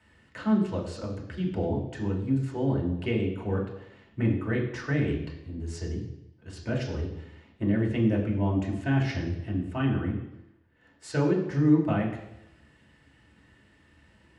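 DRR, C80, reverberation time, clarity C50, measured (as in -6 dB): -3.0 dB, 8.5 dB, 0.90 s, 6.0 dB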